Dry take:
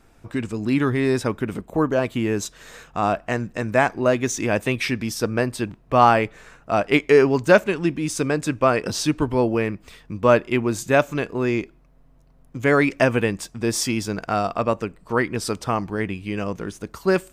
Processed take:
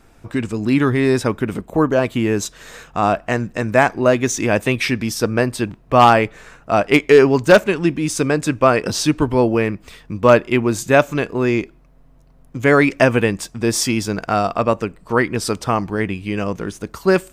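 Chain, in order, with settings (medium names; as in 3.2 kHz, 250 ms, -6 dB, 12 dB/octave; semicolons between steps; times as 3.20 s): wavefolder -5.5 dBFS; trim +4.5 dB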